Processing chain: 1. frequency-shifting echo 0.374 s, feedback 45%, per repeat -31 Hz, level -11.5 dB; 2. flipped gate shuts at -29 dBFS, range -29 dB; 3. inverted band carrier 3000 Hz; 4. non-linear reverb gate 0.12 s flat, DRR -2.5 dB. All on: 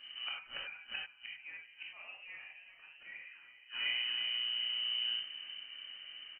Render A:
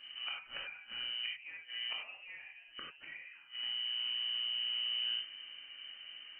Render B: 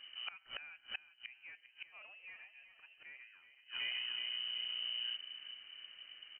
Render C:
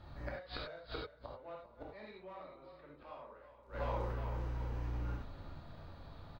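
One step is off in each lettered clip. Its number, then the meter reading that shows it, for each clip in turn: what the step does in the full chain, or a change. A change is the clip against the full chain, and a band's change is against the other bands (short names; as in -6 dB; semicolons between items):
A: 1, momentary loudness spread change -2 LU; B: 4, loudness change -4.5 LU; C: 3, momentary loudness spread change -3 LU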